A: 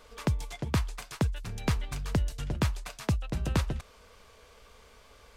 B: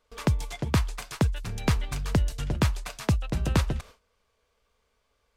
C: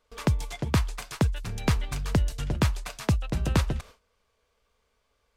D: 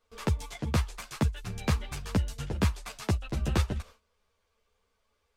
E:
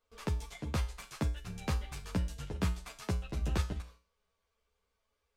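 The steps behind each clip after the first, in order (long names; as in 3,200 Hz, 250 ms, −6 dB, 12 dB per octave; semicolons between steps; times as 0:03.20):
noise gate with hold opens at −42 dBFS; level +4 dB
no processing that can be heard
string-ensemble chorus
tuned comb filter 60 Hz, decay 0.41 s, harmonics odd, mix 70%; level +1.5 dB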